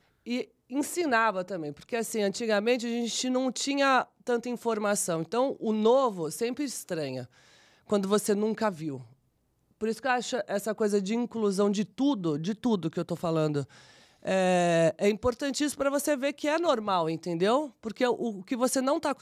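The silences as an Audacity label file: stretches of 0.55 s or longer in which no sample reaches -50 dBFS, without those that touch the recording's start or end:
9.130000	9.810000	silence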